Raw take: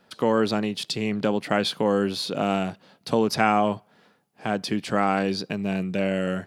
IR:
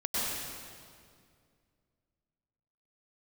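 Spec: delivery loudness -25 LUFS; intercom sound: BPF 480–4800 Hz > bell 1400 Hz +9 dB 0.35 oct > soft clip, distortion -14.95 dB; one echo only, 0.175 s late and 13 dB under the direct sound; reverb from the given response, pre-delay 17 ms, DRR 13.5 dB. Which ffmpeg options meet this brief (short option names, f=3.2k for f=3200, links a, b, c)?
-filter_complex "[0:a]aecho=1:1:175:0.224,asplit=2[a][b];[1:a]atrim=start_sample=2205,adelay=17[c];[b][c]afir=irnorm=-1:irlink=0,volume=-22dB[d];[a][d]amix=inputs=2:normalize=0,highpass=480,lowpass=4.8k,equalizer=f=1.4k:t=o:w=0.35:g=9,asoftclip=threshold=-13.5dB,volume=2dB"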